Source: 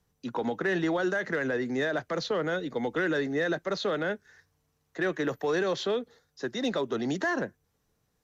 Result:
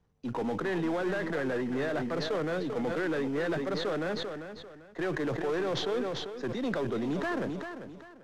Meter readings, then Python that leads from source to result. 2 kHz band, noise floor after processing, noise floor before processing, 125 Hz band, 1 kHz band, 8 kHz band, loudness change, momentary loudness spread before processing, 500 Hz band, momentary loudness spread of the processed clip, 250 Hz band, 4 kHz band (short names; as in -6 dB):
-5.0 dB, -53 dBFS, -75 dBFS, +1.0 dB, -2.0 dB, n/a, -2.0 dB, 6 LU, -2.0 dB, 8 LU, -0.5 dB, -1.5 dB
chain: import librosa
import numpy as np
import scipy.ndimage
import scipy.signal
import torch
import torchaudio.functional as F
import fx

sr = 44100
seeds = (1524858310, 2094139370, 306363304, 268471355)

p1 = np.where(x < 0.0, 10.0 ** (-3.0 / 20.0) * x, x)
p2 = fx.high_shelf(p1, sr, hz=4000.0, db=-10.5)
p3 = fx.sample_hold(p2, sr, seeds[0], rate_hz=2800.0, jitter_pct=20)
p4 = p2 + F.gain(torch.from_numpy(p3), -10.0).numpy()
p5 = 10.0 ** (-26.0 / 20.0) * np.tanh(p4 / 10.0 ** (-26.0 / 20.0))
p6 = fx.air_absorb(p5, sr, metres=51.0)
p7 = fx.echo_feedback(p6, sr, ms=394, feedback_pct=22, wet_db=-10.5)
y = fx.sustainer(p7, sr, db_per_s=30.0)